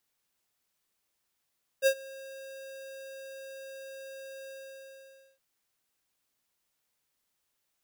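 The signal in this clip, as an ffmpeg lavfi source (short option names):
-f lavfi -i "aevalsrc='0.0891*(2*lt(mod(538*t,1),0.5)-1)':d=3.569:s=44100,afade=t=in:d=0.045,afade=t=out:st=0.045:d=0.074:silence=0.0668,afade=t=out:st=2.66:d=0.909"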